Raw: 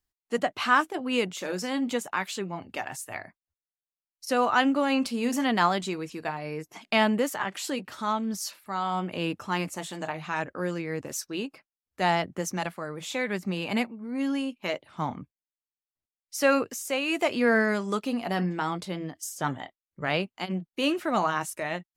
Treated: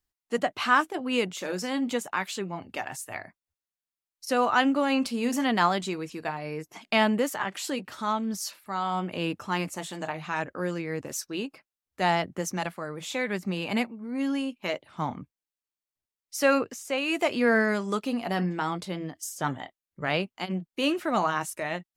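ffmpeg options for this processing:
-filter_complex "[0:a]asettb=1/sr,asplit=3[s0][s1][s2];[s0]atrim=end=16.584[s3];[s1]atrim=start=16.58:end=16.98,asetpts=PTS-STARTPTS,afade=t=in:d=0.004:c=qsin,afade=t=out:st=0.396:d=0.004:c=qsin,highshelf=f=7500:g=-10.5[s4];[s2]atrim=start=16.976[s5];[s3][s4]acrossfade=d=0.004:c1=hsin:c2=qsin[s6];[s6][s5]acrossfade=d=0.004:c1=qsin:c2=hsin"

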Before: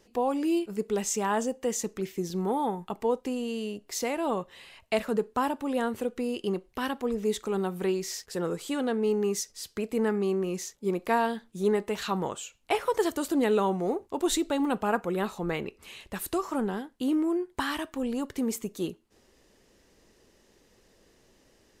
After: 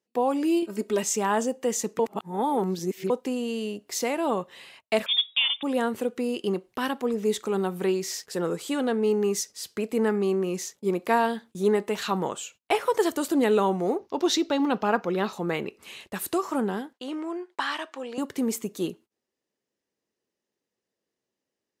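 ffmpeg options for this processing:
-filter_complex "[0:a]asettb=1/sr,asplit=3[s0][s1][s2];[s0]atrim=end=0.624[s3];[s1]atrim=start=0.62:end=1.03,asetpts=PTS-STARTPTS,afade=t=in:d=0.004:c=qsin,afade=t=out:st=0.406:d=0.004:c=qsin,aecho=1:1:3.2:0.83,atrim=end_sample=18081[s4];[s2]atrim=start=1.026[s5];[s3][s4]acrossfade=d=0.004:c1=hsin:c2=qsin[s6];[s6][s5]acrossfade=d=0.004:c1=qsin:c2=hsin,asettb=1/sr,asplit=3[s7][s8][s9];[s7]atrim=end=5.064[s10];[s8]atrim=start=5.06:end=5.63,asetpts=PTS-STARTPTS,afade=t=in:d=0.004:c=qsin,afade=t=out:st=0.566:d=0.004:c=qsin,lowpass=f=3200:t=q:w=0.5098,lowpass=f=3200:t=q:w=0.6013,lowpass=f=3200:t=q:w=0.9,lowpass=f=3200:t=q:w=2.563,afreqshift=-3800[s11];[s9]atrim=start=5.626[s12];[s10][s11]acrossfade=d=0.004:c1=hsin:c2=qsin[s13];[s13][s12]acrossfade=d=0.004:c1=qsin:c2=hsin,asettb=1/sr,asplit=3[s14][s15][s16];[s14]atrim=end=13.984[s17];[s15]atrim=start=13.98:end=15.33,asetpts=PTS-STARTPTS,afade=t=in:d=0.004:c=qsin,afade=t=out:st=1.346:d=0.004:c=qsin,highshelf=f=6800:t=q:w=3:g=-7.5[s18];[s16]atrim=start=15.326[s19];[s17][s18]acrossfade=d=0.004:c1=hsin:c2=qsin[s20];[s20][s19]acrossfade=d=0.004:c1=qsin:c2=hsin,asettb=1/sr,asplit=3[s21][s22][s23];[s21]atrim=end=16.934[s24];[s22]atrim=start=16.93:end=18.18,asetpts=PTS-STARTPTS,afade=t=in:d=0.004:c=qsin,afade=t=out:st=1.246:d=0.004:c=qsin,highpass=540,lowpass=5900[s25];[s23]atrim=start=18.176[s26];[s24][s25]acrossfade=d=0.004:c1=hsin:c2=qsin[s27];[s27][s26]acrossfade=d=0.004:c1=qsin:c2=hsin,asplit=3[s28][s29][s30];[s28]atrim=end=1.992[s31];[s29]atrim=start=1.988:end=3.102,asetpts=PTS-STARTPTS,areverse[s32];[s30]atrim=start=3.098[s33];[s31][s32]acrossfade=d=0.004:c1=hsin:c2=hsin[s34];[s34][s33]acrossfade=d=0.004:c1=hsin:c2=hsin,highpass=140,agate=range=0.0501:threshold=0.00282:ratio=16:detection=peak,volume=1.41"

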